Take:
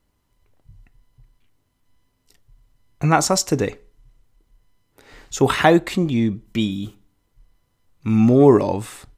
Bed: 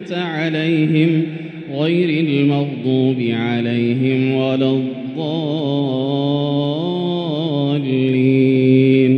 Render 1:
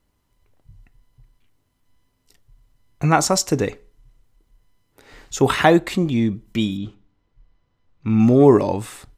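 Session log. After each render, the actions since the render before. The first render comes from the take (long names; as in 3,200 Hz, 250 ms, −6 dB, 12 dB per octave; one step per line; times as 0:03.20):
0:06.77–0:08.20: high-frequency loss of the air 150 metres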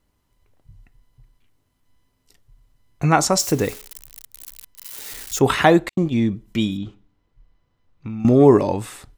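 0:03.39–0:05.39: spike at every zero crossing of −24.5 dBFS
0:05.89–0:06.29: noise gate −24 dBFS, range −53 dB
0:06.83–0:08.25: downward compressor, threshold −27 dBFS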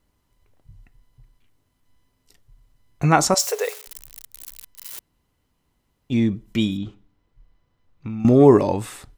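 0:03.34–0:03.87: linear-phase brick-wall high-pass 400 Hz
0:04.99–0:06.10: fill with room tone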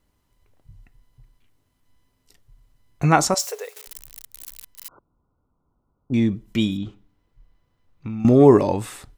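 0:03.15–0:03.76: fade out, to −16 dB
0:04.88–0:06.14: linear-phase brick-wall low-pass 1,500 Hz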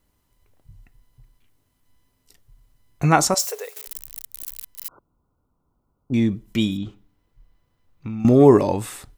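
high-shelf EQ 9,400 Hz +7 dB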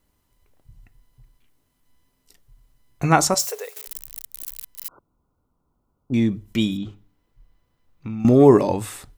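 mains-hum notches 50/100/150 Hz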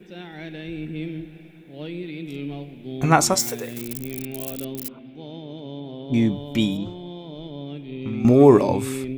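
mix in bed −17 dB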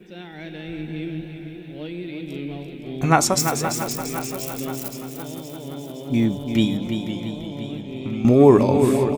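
repeating echo 340 ms, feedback 49%, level −8 dB
feedback echo with a swinging delay time 518 ms, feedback 56%, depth 109 cents, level −11 dB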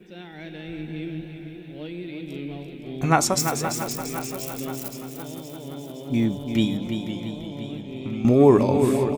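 level −2.5 dB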